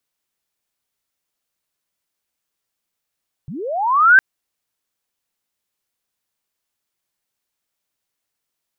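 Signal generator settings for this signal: chirp linear 120 Hz -> 1600 Hz -28 dBFS -> -4.5 dBFS 0.71 s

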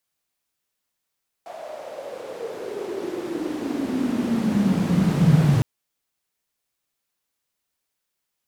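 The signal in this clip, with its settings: swept filtered noise white, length 4.16 s bandpass, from 680 Hz, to 140 Hz, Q 8.5, exponential, gain ramp +28.5 dB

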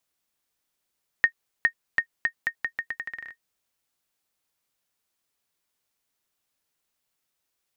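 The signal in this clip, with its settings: bouncing ball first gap 0.41 s, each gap 0.81, 1850 Hz, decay 82 ms -7.5 dBFS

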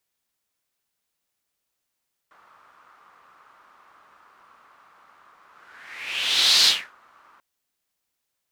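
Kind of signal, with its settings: whoosh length 5.09 s, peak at 4.34, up 1.26 s, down 0.31 s, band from 1200 Hz, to 4200 Hz, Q 4.1, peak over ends 39 dB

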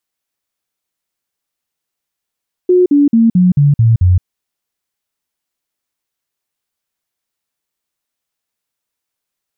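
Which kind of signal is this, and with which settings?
stepped sine 362 Hz down, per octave 3, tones 7, 0.17 s, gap 0.05 s -5.5 dBFS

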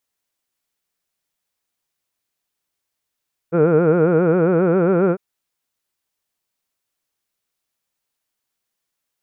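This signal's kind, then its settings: formant vowel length 1.65 s, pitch 160 Hz, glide +2.5 st, vibrato 7.4 Hz, vibrato depth 1.4 st, F1 450 Hz, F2 1400 Hz, F3 2400 Hz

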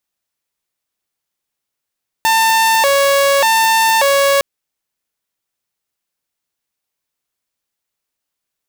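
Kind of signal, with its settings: siren hi-lo 557–896 Hz 0.85/s saw -7.5 dBFS 2.16 s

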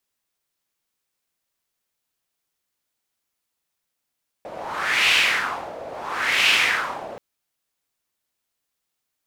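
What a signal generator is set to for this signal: wind-like swept noise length 2.73 s, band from 580 Hz, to 2700 Hz, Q 3, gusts 2, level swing 18 dB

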